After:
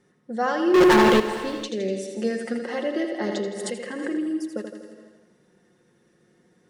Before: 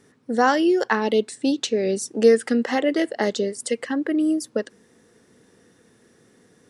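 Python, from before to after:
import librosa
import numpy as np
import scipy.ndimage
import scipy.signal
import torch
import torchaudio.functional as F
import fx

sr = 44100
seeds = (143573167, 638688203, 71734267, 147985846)

y = fx.high_shelf(x, sr, hz=4500.0, db=-8.5)
y = y + 0.58 * np.pad(y, (int(5.6 * sr / 1000.0), 0))[:len(y)]
y = fx.echo_feedback(y, sr, ms=82, feedback_pct=60, wet_db=-7.0)
y = fx.leveller(y, sr, passes=5, at=(0.74, 1.2))
y = fx.rev_gated(y, sr, seeds[0], gate_ms=500, shape='flat', drr_db=11.0)
y = fx.pre_swell(y, sr, db_per_s=35.0, at=(3.24, 4.33))
y = F.gain(torch.from_numpy(y), -7.0).numpy()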